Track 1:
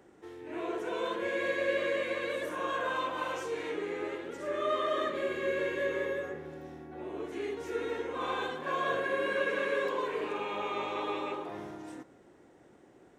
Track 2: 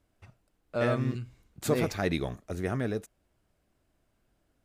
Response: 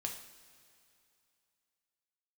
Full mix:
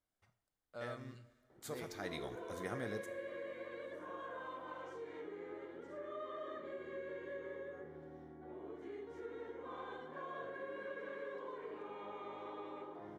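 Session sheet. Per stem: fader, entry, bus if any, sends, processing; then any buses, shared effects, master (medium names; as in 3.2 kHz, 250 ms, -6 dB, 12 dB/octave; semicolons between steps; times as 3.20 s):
-7.5 dB, 1.50 s, no send, low-pass 1.6 kHz 6 dB/octave; compression 2:1, threshold -40 dBFS, peak gain reduction 8 dB
1.86 s -16.5 dB -> 2.39 s -9.5 dB, 0.00 s, send -3.5 dB, bass shelf 490 Hz -10 dB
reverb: on, pre-delay 3 ms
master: band-stop 2.6 kHz, Q 6.6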